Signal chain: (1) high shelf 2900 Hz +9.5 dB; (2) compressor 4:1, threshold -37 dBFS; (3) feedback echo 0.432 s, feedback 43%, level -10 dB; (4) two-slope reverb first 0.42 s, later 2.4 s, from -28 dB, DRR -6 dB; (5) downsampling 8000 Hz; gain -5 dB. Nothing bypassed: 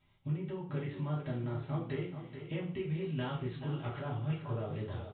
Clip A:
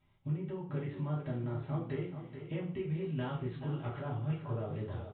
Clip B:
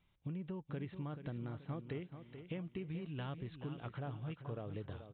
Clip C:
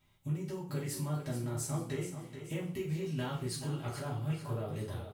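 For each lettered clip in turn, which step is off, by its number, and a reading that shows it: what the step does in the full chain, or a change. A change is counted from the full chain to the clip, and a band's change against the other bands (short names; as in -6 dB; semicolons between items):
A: 1, 4 kHz band -4.5 dB; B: 4, loudness change -7.0 LU; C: 5, 4 kHz band +4.0 dB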